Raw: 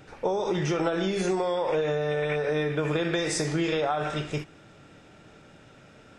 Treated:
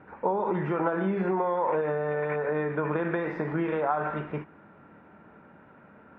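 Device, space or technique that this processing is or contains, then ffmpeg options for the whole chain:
bass cabinet: -af "highpass=71,equalizer=f=120:t=q:w=4:g=-9,equalizer=f=210:t=q:w=4:g=7,equalizer=f=980:t=q:w=4:g=10,equalizer=f=1.5k:t=q:w=4:g=3,lowpass=f=2k:w=0.5412,lowpass=f=2k:w=1.3066,volume=-2dB"

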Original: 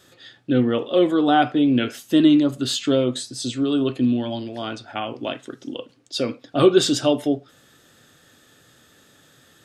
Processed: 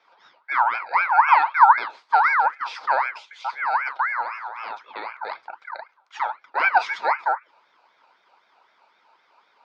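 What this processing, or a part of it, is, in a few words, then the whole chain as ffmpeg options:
voice changer toy: -filter_complex "[0:a]aeval=exprs='val(0)*sin(2*PI*1500*n/s+1500*0.3/3.9*sin(2*PI*3.9*n/s))':c=same,highpass=540,equalizer=f=920:t=q:w=4:g=9,equalizer=f=1.8k:t=q:w=4:g=-9,equalizer=f=2.9k:t=q:w=4:g=-10,lowpass=f=3.6k:w=0.5412,lowpass=f=3.6k:w=1.3066,bandreject=f=60:t=h:w=6,bandreject=f=120:t=h:w=6,asettb=1/sr,asplit=3[a][b][c];[a]atrim=end=1.094[d];[b]atrim=start=1.09:end=1.73,asetpts=PTS-STARTPTS,afade=t=in:d=0.004:c=qsin,afade=t=out:st=0.636:d=0.004:c=qsin,lowshelf=f=630:t=q:w=3:g=-13.5[e];[c]atrim=start=1.726[f];[d][e]acrossfade=d=0.004:c1=hsin:c2=qsin[g];[g][f]acrossfade=d=0.004:c1=qsin:c2=hsin"

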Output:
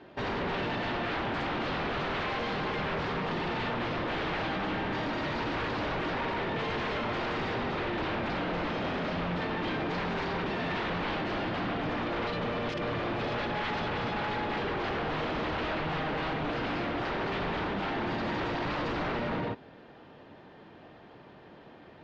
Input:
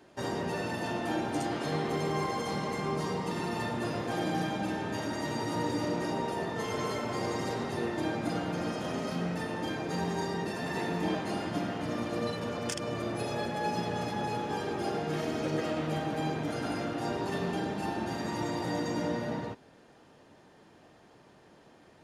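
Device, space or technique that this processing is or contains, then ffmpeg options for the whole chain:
synthesiser wavefolder: -af "aeval=exprs='0.0224*(abs(mod(val(0)/0.0224+3,4)-2)-1)':c=same,lowpass=f=3.8k:w=0.5412,lowpass=f=3.8k:w=1.3066,volume=6dB"

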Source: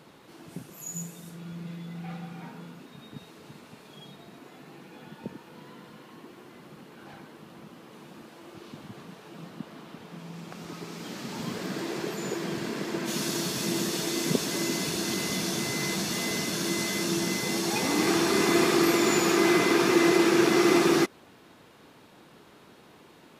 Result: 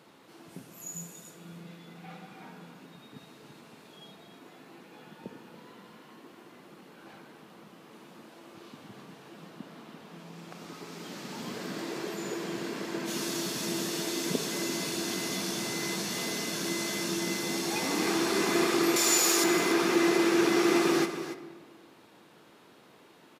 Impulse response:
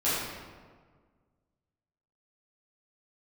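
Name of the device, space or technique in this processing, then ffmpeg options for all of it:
saturated reverb return: -filter_complex "[0:a]asettb=1/sr,asplit=3[a][b][c];[a]atrim=end=18.964[d];[b]atrim=start=18.96:end=19.44,asetpts=PTS-STARTPTS,afade=t=in:d=0.004:c=qsin,afade=t=out:st=0.476:d=0.004:c=qsin,bass=f=250:g=-14,treble=f=4k:g=12[e];[c]atrim=start=19.436[f];[d][e]acrossfade=d=0.004:c1=hsin:c2=qsin[g];[g][f]acrossfade=d=0.004:c1=qsin:c2=hsin,asplit=2[h][i];[1:a]atrim=start_sample=2205[j];[i][j]afir=irnorm=-1:irlink=0,asoftclip=type=tanh:threshold=-11.5dB,volume=-18.5dB[k];[h][k]amix=inputs=2:normalize=0,highpass=f=190:p=1,aecho=1:1:284:0.251,volume=-4dB"

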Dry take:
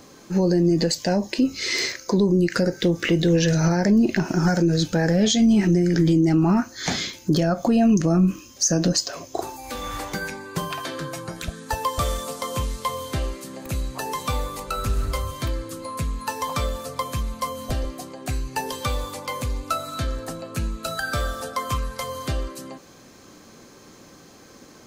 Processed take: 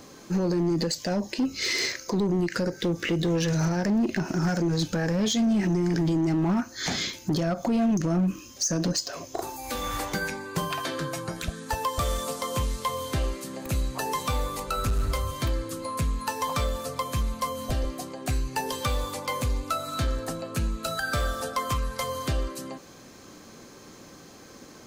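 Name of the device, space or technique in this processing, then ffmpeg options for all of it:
limiter into clipper: -filter_complex "[0:a]alimiter=limit=-16dB:level=0:latency=1:release=225,asoftclip=type=hard:threshold=-20dB,asettb=1/sr,asplit=3[a][b][c];[a]atrim=end=9.384[d];[b]atrim=start=9.38:end=10.06,asetpts=PTS-STARTPTS,afade=t=in:d=0.004:c=qsin,afade=t=out:st=0.676:d=0.004:c=qsin,highshelf=f=10k:g=5.5[e];[c]atrim=start=10.056[f];[d][e]acrossfade=d=0.004:c1=hsin:c2=qsin[g];[g][f]acrossfade=d=0.004:c1=qsin:c2=hsin"

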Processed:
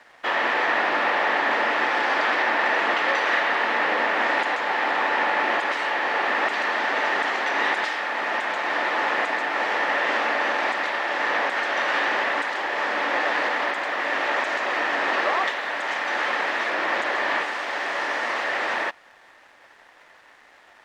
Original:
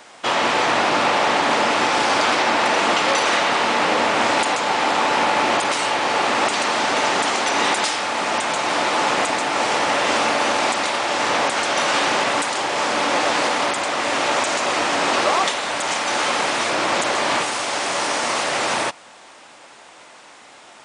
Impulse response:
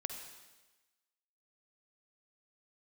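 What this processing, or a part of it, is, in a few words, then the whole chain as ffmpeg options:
pocket radio on a weak battery: -af "highpass=300,lowpass=3.1k,aeval=exprs='sgn(val(0))*max(abs(val(0))-0.00251,0)':c=same,equalizer=f=1.8k:t=o:w=0.29:g=10.5,volume=-5dB"

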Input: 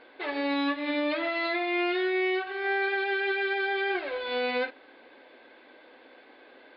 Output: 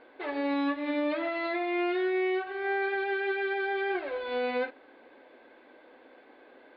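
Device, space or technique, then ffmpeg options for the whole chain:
through cloth: -af "highshelf=f=2.6k:g=-12.5"

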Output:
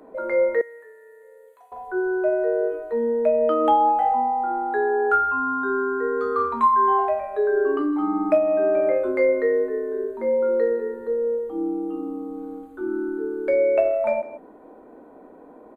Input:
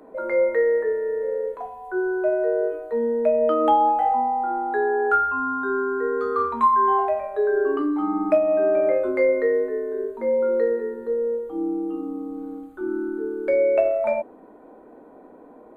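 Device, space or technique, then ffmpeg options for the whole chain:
ducked delay: -filter_complex "[0:a]asplit=3[a][b][c];[b]adelay=156,volume=-9dB[d];[c]apad=whole_len=702089[e];[d][e]sidechaincompress=threshold=-31dB:ratio=8:attack=16:release=282[f];[a][f]amix=inputs=2:normalize=0,asettb=1/sr,asplit=3[g][h][i];[g]atrim=end=0.614[j];[h]atrim=start=0.61:end=1.72,asetpts=PTS-STARTPTS,afade=t=in:d=0.004:c=qsin,afade=t=out:st=1.106:d=0.004:c=qsin,aderivative[k];[i]atrim=start=1.716[l];[j][k]acrossfade=d=0.004:c1=hsin:c2=qsin[m];[m][l]acrossfade=d=0.004:c1=qsin:c2=hsin"

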